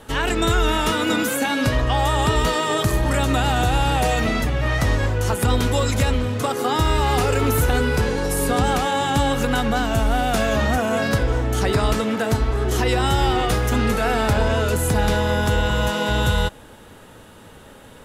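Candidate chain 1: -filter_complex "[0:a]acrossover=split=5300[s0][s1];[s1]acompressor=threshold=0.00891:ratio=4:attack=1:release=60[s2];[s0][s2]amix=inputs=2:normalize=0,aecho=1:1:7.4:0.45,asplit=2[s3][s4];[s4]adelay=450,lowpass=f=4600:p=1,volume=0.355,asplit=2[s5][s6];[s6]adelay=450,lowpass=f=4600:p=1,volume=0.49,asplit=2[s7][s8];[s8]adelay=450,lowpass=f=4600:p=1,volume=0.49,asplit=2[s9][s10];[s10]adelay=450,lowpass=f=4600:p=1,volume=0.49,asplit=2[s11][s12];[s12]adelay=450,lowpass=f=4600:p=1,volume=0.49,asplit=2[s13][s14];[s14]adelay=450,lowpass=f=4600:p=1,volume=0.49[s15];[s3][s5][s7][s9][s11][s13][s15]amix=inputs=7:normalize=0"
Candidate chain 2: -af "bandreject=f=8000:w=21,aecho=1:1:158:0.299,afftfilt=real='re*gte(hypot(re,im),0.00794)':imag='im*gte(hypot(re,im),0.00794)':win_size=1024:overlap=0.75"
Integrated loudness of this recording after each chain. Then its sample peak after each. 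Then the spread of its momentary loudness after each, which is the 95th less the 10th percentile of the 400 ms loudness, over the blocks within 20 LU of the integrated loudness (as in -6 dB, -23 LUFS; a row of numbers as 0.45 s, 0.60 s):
-19.5 LUFS, -20.0 LUFS; -6.0 dBFS, -7.5 dBFS; 3 LU, 3 LU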